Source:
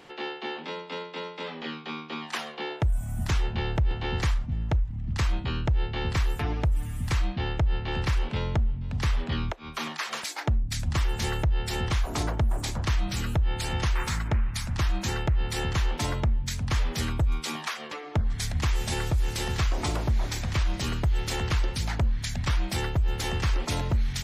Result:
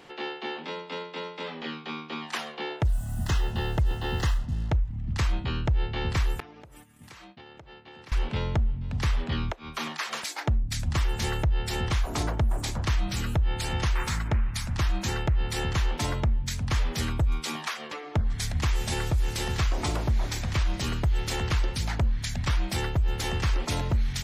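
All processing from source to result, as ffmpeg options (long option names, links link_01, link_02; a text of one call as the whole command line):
ffmpeg -i in.wav -filter_complex "[0:a]asettb=1/sr,asplit=3[link_01][link_02][link_03];[link_01]atrim=end=2.854[link_04];[link_02]atrim=start=2.85:end=4.7,asetpts=PTS-STARTPTS,afade=type=in:duration=0.004:curve=qsin,afade=type=out:start_time=1.846:duration=0.004:curve=qsin,acrusher=bits=7:mix=0:aa=0.5,asuperstop=centerf=2300:order=20:qfactor=6.6[link_05];[link_03]atrim=start=4.696[link_06];[link_04][link_05]acrossfade=duration=0.004:curve1=hsin:curve2=qsin[link_07];[link_07][link_06]acrossfade=duration=0.004:curve1=qsin:curve2=hsin,asettb=1/sr,asplit=3[link_08][link_09][link_10];[link_08]atrim=end=6.404[link_11];[link_09]atrim=start=6.4:end=8.12,asetpts=PTS-STARTPTS,afade=type=in:duration=0.004:curve=qsin,afade=type=out:start_time=1.716:duration=0.004:curve=qsin,agate=range=-33dB:threshold=-23dB:ratio=3:release=100:detection=peak,highpass=220,acompressor=threshold=-43dB:ratio=16:attack=3.2:release=140:knee=1:detection=peak[link_12];[link_10]atrim=start=8.116[link_13];[link_11][link_12]acrossfade=duration=0.004:curve1=hsin:curve2=qsin[link_14];[link_14][link_13]acrossfade=duration=0.004:curve1=qsin:curve2=hsin" out.wav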